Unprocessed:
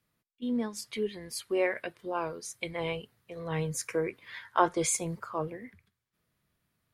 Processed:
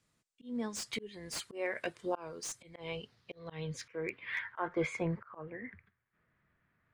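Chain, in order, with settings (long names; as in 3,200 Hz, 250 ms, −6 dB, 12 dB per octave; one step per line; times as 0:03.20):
low-pass filter sweep 7,700 Hz → 1,800 Hz, 0:02.51–0:04.75
volume swells 375 ms
slew-rate limiting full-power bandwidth 70 Hz
level +1 dB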